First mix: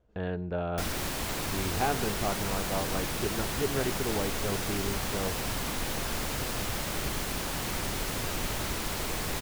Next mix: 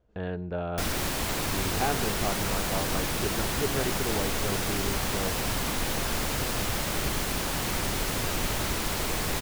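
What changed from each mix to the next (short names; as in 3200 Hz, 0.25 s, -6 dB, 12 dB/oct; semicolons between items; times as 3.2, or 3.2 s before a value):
background +3.5 dB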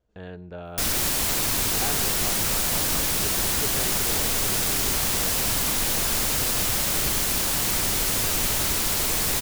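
speech -6.0 dB; master: add high shelf 3900 Hz +11.5 dB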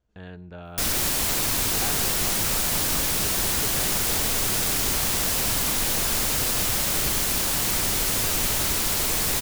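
speech: add bell 500 Hz -6 dB 1.1 oct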